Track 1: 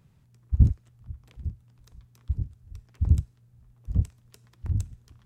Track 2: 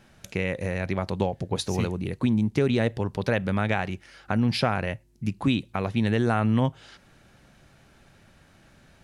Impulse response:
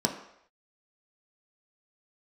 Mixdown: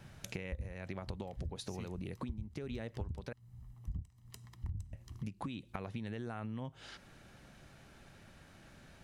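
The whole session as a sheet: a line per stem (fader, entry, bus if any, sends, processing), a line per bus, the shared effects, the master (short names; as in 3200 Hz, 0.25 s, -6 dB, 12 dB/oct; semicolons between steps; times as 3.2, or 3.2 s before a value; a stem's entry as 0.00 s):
0.0 dB, 0.00 s, no send, compressor 10:1, threshold -24 dBFS, peak gain reduction 14 dB; comb 1 ms, depth 57%
-2.0 dB, 0.00 s, muted 3.33–4.93, no send, compressor, threshold -27 dBFS, peak gain reduction 9 dB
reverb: off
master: compressor 8:1, threshold -38 dBFS, peak gain reduction 19 dB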